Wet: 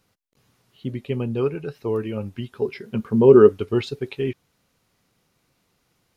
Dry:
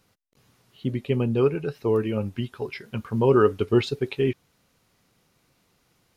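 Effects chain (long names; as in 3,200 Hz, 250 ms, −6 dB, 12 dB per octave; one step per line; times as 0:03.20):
0:02.55–0:03.49: hollow resonant body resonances 220/390 Hz, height 10 dB, ringing for 25 ms
level −2 dB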